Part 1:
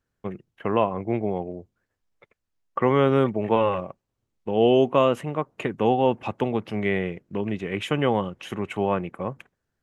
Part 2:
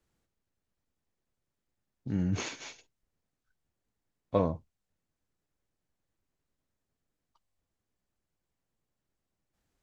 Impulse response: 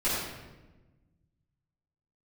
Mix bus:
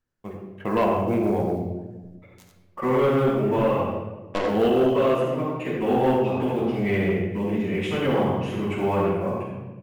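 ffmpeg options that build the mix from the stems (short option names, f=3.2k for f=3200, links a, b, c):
-filter_complex "[0:a]dynaudnorm=f=110:g=11:m=11dB,acrusher=bits=8:mode=log:mix=0:aa=0.000001,volume=-7.5dB,asplit=2[a][b];[b]volume=-9dB[c];[1:a]highpass=f=260:w=0.5412,highpass=f=260:w=1.3066,acrusher=bits=3:mix=0:aa=0.5,volume=-1dB,asplit=4[d][e][f][g];[e]volume=-9dB[h];[f]volume=-5dB[i];[g]apad=whole_len=433364[j];[a][j]sidechaingate=range=-33dB:threshold=-58dB:ratio=16:detection=peak[k];[2:a]atrim=start_sample=2205[l];[c][h]amix=inputs=2:normalize=0[m];[m][l]afir=irnorm=-1:irlink=0[n];[i]aecho=0:1:90:1[o];[k][d][n][o]amix=inputs=4:normalize=0,asoftclip=type=tanh:threshold=-13.5dB"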